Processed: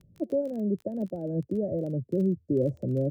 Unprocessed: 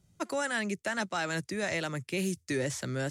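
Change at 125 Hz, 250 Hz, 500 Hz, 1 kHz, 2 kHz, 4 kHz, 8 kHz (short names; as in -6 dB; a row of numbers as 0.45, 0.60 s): +6.5 dB, +7.0 dB, +5.5 dB, -14.5 dB, under -35 dB, under -25 dB, under -25 dB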